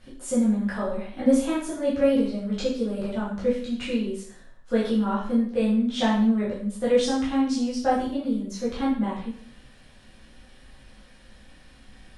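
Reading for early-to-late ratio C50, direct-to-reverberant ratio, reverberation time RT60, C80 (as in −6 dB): 4.0 dB, −8.5 dB, 0.55 s, 7.0 dB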